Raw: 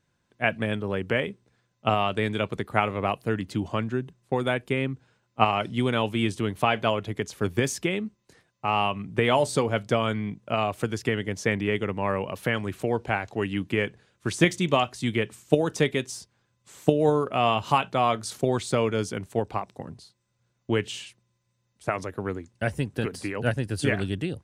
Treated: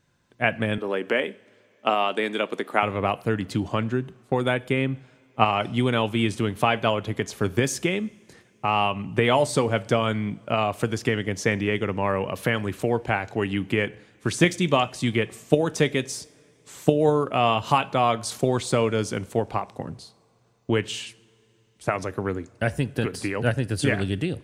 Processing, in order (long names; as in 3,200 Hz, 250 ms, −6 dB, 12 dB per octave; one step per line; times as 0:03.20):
0:00.78–0:02.83: high-pass filter 240 Hz 24 dB per octave
in parallel at −1.5 dB: downward compressor, threshold −31 dBFS, peak gain reduction 17 dB
on the sum: coupled-rooms reverb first 0.58 s, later 3.4 s, from −17 dB, DRR 18 dB